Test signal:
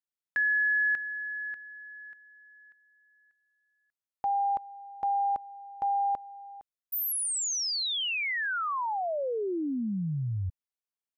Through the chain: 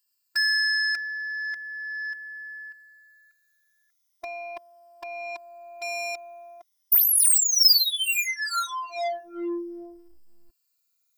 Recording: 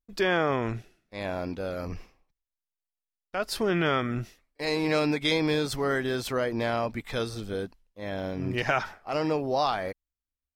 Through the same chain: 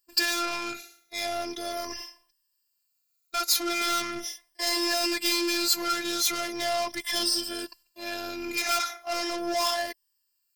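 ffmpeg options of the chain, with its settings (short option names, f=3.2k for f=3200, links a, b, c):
-filter_complex "[0:a]afftfilt=real='re*pow(10,13/40*sin(2*PI*(1.3*log(max(b,1)*sr/1024/100)/log(2)-(-0.39)*(pts-256)/sr)))':imag='im*pow(10,13/40*sin(2*PI*(1.3*log(max(b,1)*sr/1024/100)/log(2)-(-0.39)*(pts-256)/sr)))':win_size=1024:overlap=0.75,asplit=2[a][b];[b]highpass=f=720:p=1,volume=26dB,asoftclip=type=tanh:threshold=-9dB[c];[a][c]amix=inputs=2:normalize=0,lowpass=f=6.9k:p=1,volume=-6dB,aemphasis=mode=production:type=75fm,afftfilt=real='hypot(re,im)*cos(PI*b)':imag='0':win_size=512:overlap=0.75,equalizer=f=5.1k:w=4.2:g=8,volume=-10dB"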